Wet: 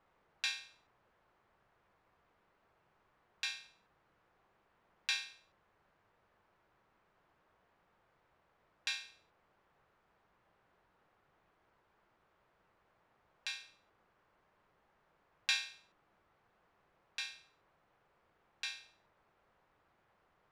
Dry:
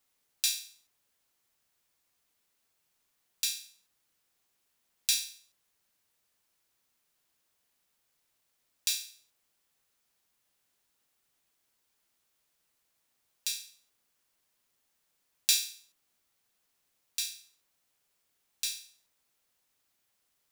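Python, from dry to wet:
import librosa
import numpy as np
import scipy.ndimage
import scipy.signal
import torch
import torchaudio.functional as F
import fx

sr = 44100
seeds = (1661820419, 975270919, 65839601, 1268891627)

y = scipy.signal.sosfilt(scipy.signal.cheby1(2, 1.0, 1200.0, 'lowpass', fs=sr, output='sos'), x)
y = fx.peak_eq(y, sr, hz=260.0, db=-9.5, octaves=0.22)
y = y * librosa.db_to_amplitude(14.5)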